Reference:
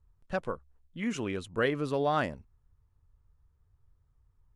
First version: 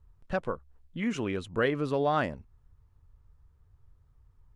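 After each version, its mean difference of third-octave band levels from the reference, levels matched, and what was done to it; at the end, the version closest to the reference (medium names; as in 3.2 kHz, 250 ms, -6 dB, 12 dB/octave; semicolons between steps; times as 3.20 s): 1.0 dB: treble shelf 5.9 kHz -8 dB; in parallel at +0.5 dB: compression, threshold -42 dBFS, peak gain reduction 18 dB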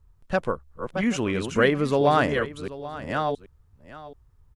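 3.5 dB: chunks repeated in reverse 670 ms, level -6 dB; on a send: delay 782 ms -16 dB; on the sum: trim +8 dB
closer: first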